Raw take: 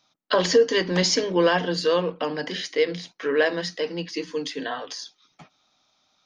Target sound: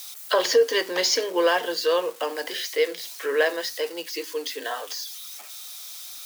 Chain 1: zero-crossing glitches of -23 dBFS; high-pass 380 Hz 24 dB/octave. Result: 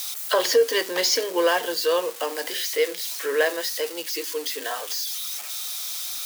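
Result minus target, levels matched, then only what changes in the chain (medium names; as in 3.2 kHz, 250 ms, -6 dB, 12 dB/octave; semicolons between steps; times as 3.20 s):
zero-crossing glitches: distortion +8 dB
change: zero-crossing glitches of -31 dBFS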